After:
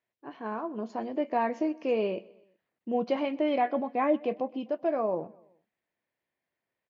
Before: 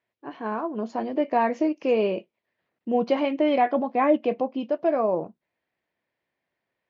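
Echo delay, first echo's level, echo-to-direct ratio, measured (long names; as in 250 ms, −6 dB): 126 ms, −23.5 dB, −22.0 dB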